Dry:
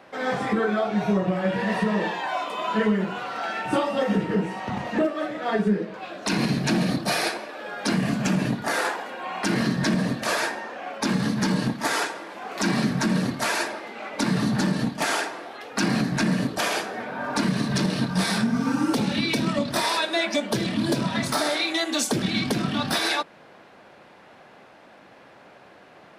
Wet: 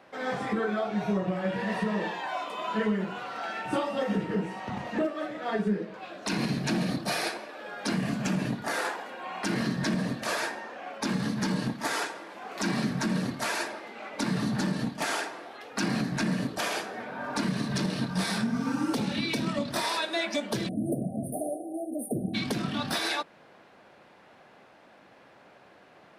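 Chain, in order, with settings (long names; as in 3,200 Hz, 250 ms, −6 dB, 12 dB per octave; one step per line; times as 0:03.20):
time-frequency box erased 0:20.68–0:22.34, 790–8,600 Hz
level −5.5 dB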